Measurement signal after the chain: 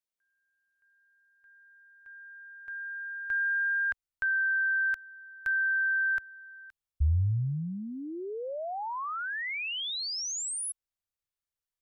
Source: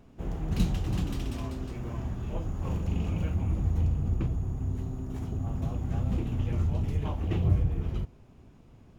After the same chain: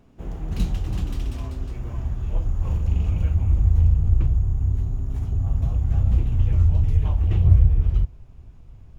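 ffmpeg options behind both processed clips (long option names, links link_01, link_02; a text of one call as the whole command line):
ffmpeg -i in.wav -af "asubboost=boost=6.5:cutoff=90" out.wav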